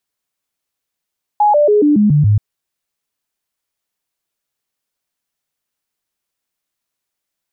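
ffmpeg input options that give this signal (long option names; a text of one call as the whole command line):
ffmpeg -f lavfi -i "aevalsrc='0.422*clip(min(mod(t,0.14),0.14-mod(t,0.14))/0.005,0,1)*sin(2*PI*835*pow(2,-floor(t/0.14)/2)*mod(t,0.14))':duration=0.98:sample_rate=44100" out.wav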